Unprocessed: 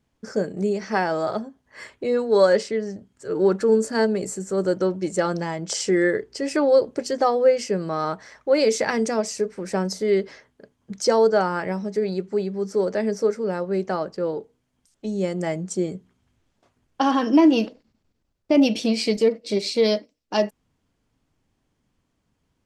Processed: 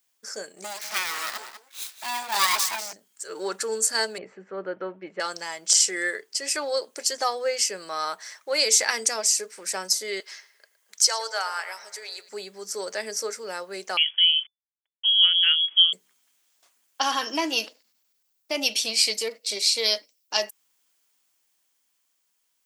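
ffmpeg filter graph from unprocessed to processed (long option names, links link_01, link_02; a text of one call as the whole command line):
ffmpeg -i in.wav -filter_complex "[0:a]asettb=1/sr,asplit=3[link_01][link_02][link_03];[link_01]atrim=end=0.644[link_04];[link_02]atrim=start=0.64:end=2.93,asetpts=PTS-STARTPTS,afade=type=in:duration=0.004:curve=qsin,afade=type=out:start_time=2.286:duration=0.004:curve=qsin,asuperstop=centerf=950:order=4:qfactor=6.3,aecho=1:1:195:0.266,atrim=end_sample=100989,aeval=exprs='abs(val(0))':channel_layout=same[link_05];[link_03]atrim=start=2.926[link_06];[link_04][link_05]acrossfade=duration=0.004:curve1=hsin:curve2=qsin[link_07];[link_07][link_06]acrossfade=duration=0.004:curve1=qsin:curve2=hsin,asettb=1/sr,asplit=3[link_08][link_09][link_10];[link_08]atrim=end=4.184[link_11];[link_09]atrim=start=4.18:end=5.2,asetpts=PTS-STARTPTS,afade=type=in:duration=0.004:curve=qsin,afade=type=out:start_time=1.016:duration=0.004:curve=qsin,lowpass=frequency=2500:width=0.5412,lowpass=frequency=2500:width=1.3066,aemphasis=mode=reproduction:type=bsi[link_12];[link_10]atrim=start=5.196[link_13];[link_11][link_12]acrossfade=duration=0.004:curve1=hsin:curve2=qsin[link_14];[link_14][link_13]acrossfade=duration=0.004:curve1=qsin:curve2=hsin,asettb=1/sr,asplit=3[link_15][link_16][link_17];[link_15]atrim=end=10.204[link_18];[link_16]atrim=start=10.2:end=12.29,asetpts=PTS-STARTPTS,afade=type=in:duration=0.004:curve=qsin,afade=type=out:start_time=2.086:duration=0.004:curve=qsin,highpass=780,asplit=2[link_19][link_20];[link_20]adelay=114,lowpass=frequency=3400:poles=1,volume=-14dB,asplit=2[link_21][link_22];[link_22]adelay=114,lowpass=frequency=3400:poles=1,volume=0.53,asplit=2[link_23][link_24];[link_24]adelay=114,lowpass=frequency=3400:poles=1,volume=0.53,asplit=2[link_25][link_26];[link_26]adelay=114,lowpass=frequency=3400:poles=1,volume=0.53,asplit=2[link_27][link_28];[link_28]adelay=114,lowpass=frequency=3400:poles=1,volume=0.53[link_29];[link_19][link_21][link_23][link_25][link_27][link_29]amix=inputs=6:normalize=0,atrim=end_sample=92169[link_30];[link_17]atrim=start=12.286[link_31];[link_18][link_30]acrossfade=duration=0.004:curve1=hsin:curve2=qsin[link_32];[link_32][link_31]acrossfade=duration=0.004:curve1=qsin:curve2=hsin,asettb=1/sr,asplit=3[link_33][link_34][link_35];[link_33]atrim=end=13.974[link_36];[link_34]atrim=start=13.97:end=15.93,asetpts=PTS-STARTPTS,afade=type=in:duration=0.004:curve=qsin,afade=type=out:start_time=1.956:duration=0.004:curve=qsin,aeval=exprs='val(0)*gte(abs(val(0)),0.00266)':channel_layout=same,lowpass=frequency=3000:width_type=q:width=0.5098,lowpass=frequency=3000:width_type=q:width=0.6013,lowpass=frequency=3000:width_type=q:width=0.9,lowpass=frequency=3000:width_type=q:width=2.563,afreqshift=-3500[link_37];[link_35]atrim=start=15.926[link_38];[link_36][link_37]acrossfade=duration=0.004:curve1=hsin:curve2=qsin[link_39];[link_39][link_38]acrossfade=duration=0.004:curve1=qsin:curve2=hsin,highpass=frequency=1300:poles=1,aemphasis=mode=production:type=riaa,dynaudnorm=framelen=160:gausssize=17:maxgain=3.5dB,volume=-1.5dB" out.wav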